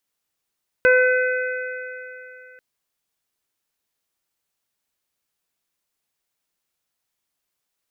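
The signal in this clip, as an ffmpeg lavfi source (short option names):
-f lavfi -i "aevalsrc='0.224*pow(10,-3*t/2.84)*sin(2*PI*506*t)+0.0282*pow(10,-3*t/0.64)*sin(2*PI*1012*t)+0.2*pow(10,-3*t/3.22)*sin(2*PI*1518*t)+0.0562*pow(10,-3*t/3.43)*sin(2*PI*2024*t)+0.0501*pow(10,-3*t/3.12)*sin(2*PI*2530*t)':d=1.74:s=44100"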